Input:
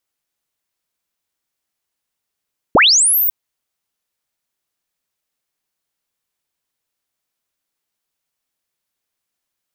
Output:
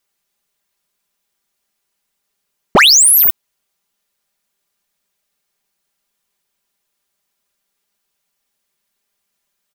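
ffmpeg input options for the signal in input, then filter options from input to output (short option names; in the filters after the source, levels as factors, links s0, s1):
-f lavfi -i "aevalsrc='pow(10,(-6-7*t/0.55)/20)*sin(2*PI*(150*t+15850*t*t/(2*0.55)))':d=0.55:s=44100"
-filter_complex "[0:a]aecho=1:1:5:0.78,asplit=2[s0][s1];[s1]aeval=exprs='0.282*(abs(mod(val(0)/0.282+3,4)-2)-1)':c=same,volume=0.708[s2];[s0][s2]amix=inputs=2:normalize=0"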